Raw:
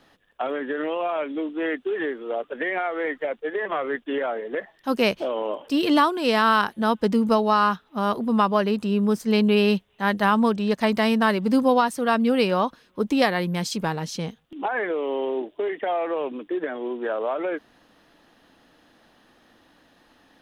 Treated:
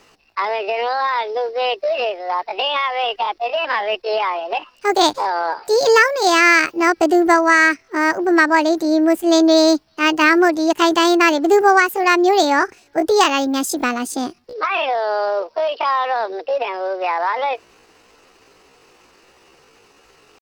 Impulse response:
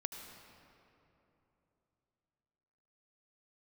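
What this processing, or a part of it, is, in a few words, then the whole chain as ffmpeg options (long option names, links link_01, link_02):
chipmunk voice: -af "asetrate=68011,aresample=44100,atempo=0.64842,volume=6.5dB"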